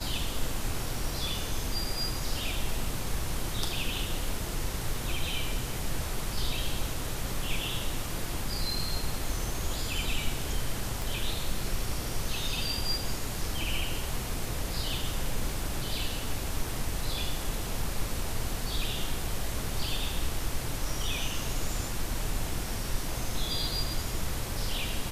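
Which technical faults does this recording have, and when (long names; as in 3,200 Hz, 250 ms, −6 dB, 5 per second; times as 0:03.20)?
0:11.02: click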